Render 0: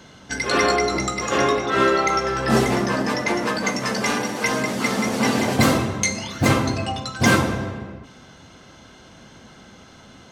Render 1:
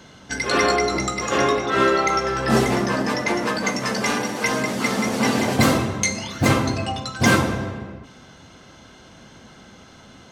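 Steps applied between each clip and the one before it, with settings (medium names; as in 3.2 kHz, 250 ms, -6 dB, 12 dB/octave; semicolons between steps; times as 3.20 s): no audible change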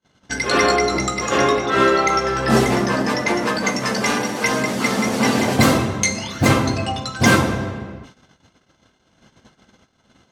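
gate -43 dBFS, range -39 dB; trim +2.5 dB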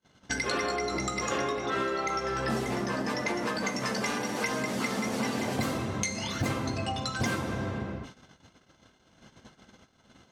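compression 6:1, threshold -26 dBFS, peak gain reduction 16 dB; trim -2 dB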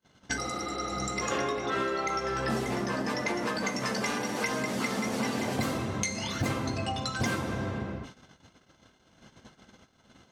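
spectral replace 0.40–1.07 s, 250–4800 Hz after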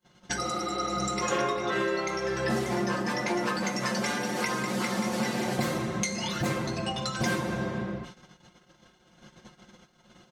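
comb 5.6 ms, depth 77%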